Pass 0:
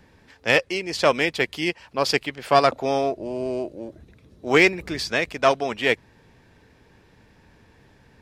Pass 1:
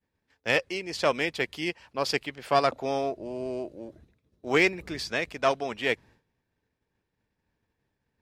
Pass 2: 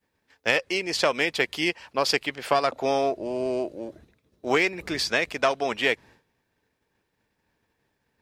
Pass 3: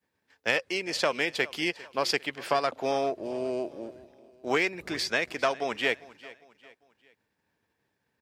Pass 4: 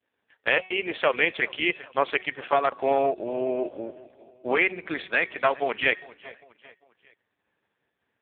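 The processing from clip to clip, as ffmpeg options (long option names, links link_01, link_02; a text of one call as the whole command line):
ffmpeg -i in.wav -af "agate=range=-33dB:threshold=-42dB:ratio=3:detection=peak,volume=-6dB" out.wav
ffmpeg -i in.wav -af "lowshelf=frequency=220:gain=-8.5,acompressor=threshold=-26dB:ratio=6,volume=8dB" out.wav
ffmpeg -i in.wav -af "highpass=78,equalizer=frequency=1600:width=4.5:gain=2,aecho=1:1:401|802|1203:0.1|0.041|0.0168,volume=-4dB" out.wav
ffmpeg -i in.wav -af "equalizer=frequency=140:width_type=o:width=2.2:gain=-5.5,bandreject=frequency=372.2:width_type=h:width=4,bandreject=frequency=744.4:width_type=h:width=4,bandreject=frequency=1116.6:width_type=h:width=4,bandreject=frequency=1488.8:width_type=h:width=4,bandreject=frequency=1861:width_type=h:width=4,bandreject=frequency=2233.2:width_type=h:width=4,bandreject=frequency=2605.4:width_type=h:width=4,bandreject=frequency=2977.6:width_type=h:width=4,bandreject=frequency=3349.8:width_type=h:width=4,bandreject=frequency=3722:width_type=h:width=4,bandreject=frequency=4094.2:width_type=h:width=4,bandreject=frequency=4466.4:width_type=h:width=4,bandreject=frequency=4838.6:width_type=h:width=4,bandreject=frequency=5210.8:width_type=h:width=4,bandreject=frequency=5583:width_type=h:width=4,volume=6.5dB" -ar 8000 -c:a libopencore_amrnb -b:a 4750 out.amr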